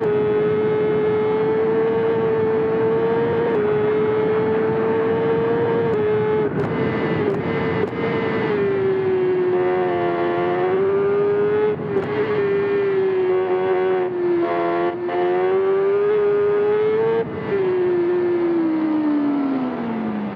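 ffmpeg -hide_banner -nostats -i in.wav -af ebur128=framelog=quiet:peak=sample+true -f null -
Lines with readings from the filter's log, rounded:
Integrated loudness:
  I:         -19.6 LUFS
  Threshold: -29.6 LUFS
Loudness range:
  LRA:         1.4 LU
  Threshold: -39.5 LUFS
  LRA low:   -20.4 LUFS
  LRA high:  -19.0 LUFS
Sample peak:
  Peak:       -7.3 dBFS
True peak:
  Peak:       -7.3 dBFS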